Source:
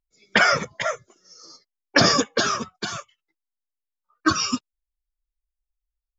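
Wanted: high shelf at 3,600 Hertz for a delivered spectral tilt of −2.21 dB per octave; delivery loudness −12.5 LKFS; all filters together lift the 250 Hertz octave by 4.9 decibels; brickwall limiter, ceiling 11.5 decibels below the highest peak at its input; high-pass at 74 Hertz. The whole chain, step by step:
high-pass filter 74 Hz
parametric band 250 Hz +6 dB
high-shelf EQ 3,600 Hz +5.5 dB
level +11.5 dB
brickwall limiter 0 dBFS

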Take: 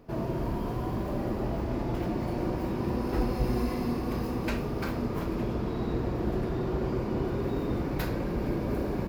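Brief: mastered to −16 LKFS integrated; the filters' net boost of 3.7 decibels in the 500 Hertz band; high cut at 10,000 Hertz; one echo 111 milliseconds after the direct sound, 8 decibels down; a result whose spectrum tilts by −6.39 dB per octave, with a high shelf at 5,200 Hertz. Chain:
low-pass filter 10,000 Hz
parametric band 500 Hz +5 dB
high-shelf EQ 5,200 Hz +4.5 dB
single-tap delay 111 ms −8 dB
level +13 dB

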